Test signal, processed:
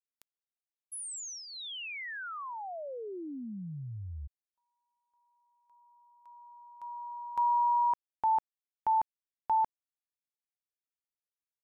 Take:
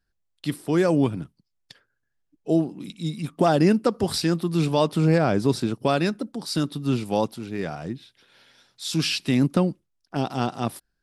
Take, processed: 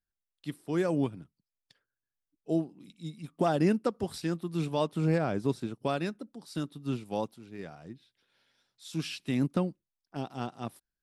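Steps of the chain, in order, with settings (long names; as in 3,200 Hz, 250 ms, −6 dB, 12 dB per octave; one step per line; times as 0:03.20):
dynamic equaliser 4,800 Hz, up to −5 dB, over −49 dBFS, Q 3.4
expander for the loud parts 1.5 to 1, over −33 dBFS
level −6.5 dB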